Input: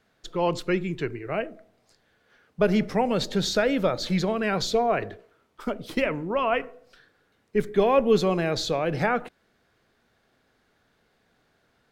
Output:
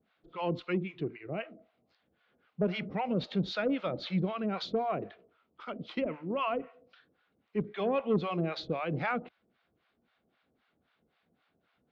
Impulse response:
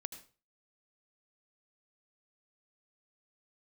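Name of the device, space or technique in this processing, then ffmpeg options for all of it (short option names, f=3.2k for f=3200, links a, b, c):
guitar amplifier with harmonic tremolo: -filter_complex "[0:a]acrossover=split=670[a][b];[a]aeval=exprs='val(0)*(1-1/2+1/2*cos(2*PI*3.8*n/s))':c=same[c];[b]aeval=exprs='val(0)*(1-1/2-1/2*cos(2*PI*3.8*n/s))':c=same[d];[c][d]amix=inputs=2:normalize=0,asoftclip=type=tanh:threshold=-16dB,highpass=79,equalizer=f=110:t=q:w=4:g=-9,equalizer=f=420:t=q:w=4:g=-5,equalizer=f=600:t=q:w=4:g=-3,equalizer=f=920:t=q:w=4:g=-4,equalizer=f=1.7k:t=q:w=4:g=-7,lowpass=f=3.6k:w=0.5412,lowpass=f=3.6k:w=1.3066"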